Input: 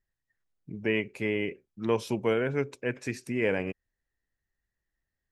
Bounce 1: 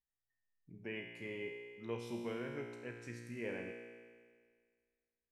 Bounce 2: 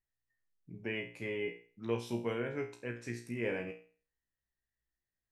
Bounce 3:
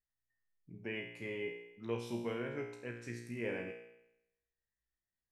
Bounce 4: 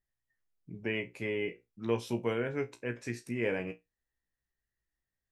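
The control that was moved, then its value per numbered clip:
resonator, decay: 1.8, 0.41, 0.85, 0.18 s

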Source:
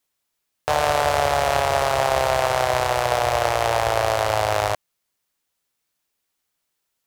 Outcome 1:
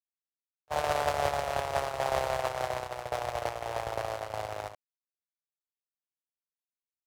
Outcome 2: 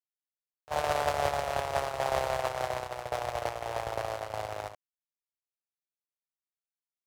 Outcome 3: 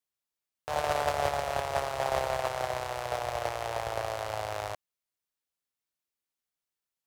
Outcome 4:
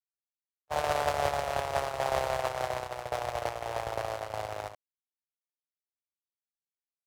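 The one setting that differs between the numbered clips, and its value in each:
gate, range: -46, -30, -14, -59 dB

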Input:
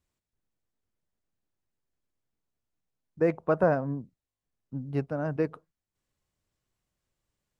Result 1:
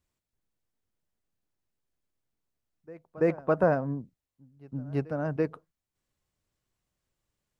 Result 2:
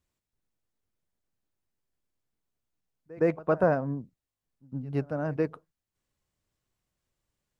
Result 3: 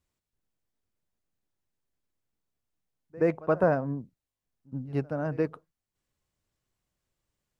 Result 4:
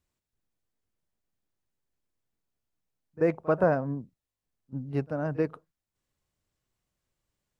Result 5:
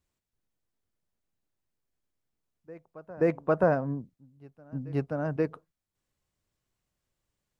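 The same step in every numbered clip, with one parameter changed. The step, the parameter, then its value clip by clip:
reverse echo, time: 334, 114, 75, 38, 529 ms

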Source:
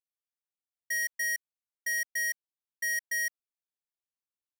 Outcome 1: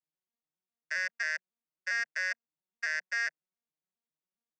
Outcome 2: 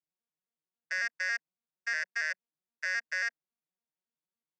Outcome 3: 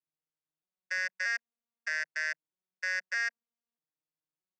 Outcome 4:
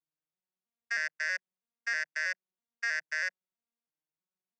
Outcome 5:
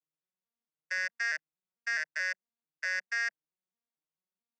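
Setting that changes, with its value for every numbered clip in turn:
arpeggiated vocoder, a note every: 136, 92, 627, 322, 219 ms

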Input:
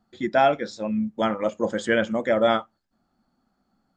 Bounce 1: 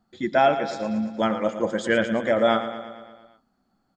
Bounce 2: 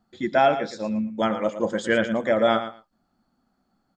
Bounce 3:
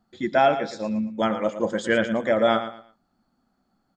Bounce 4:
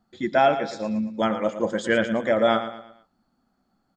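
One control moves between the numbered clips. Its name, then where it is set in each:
feedback echo, feedback: 62, 15, 26, 39%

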